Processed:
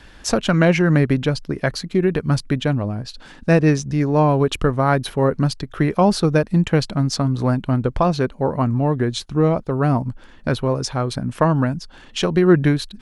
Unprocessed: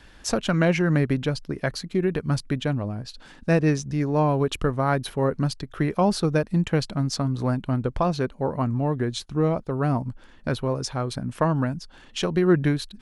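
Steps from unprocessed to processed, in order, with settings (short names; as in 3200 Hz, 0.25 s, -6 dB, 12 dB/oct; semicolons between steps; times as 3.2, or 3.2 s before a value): high shelf 9200 Hz -3.5 dB; gain +5.5 dB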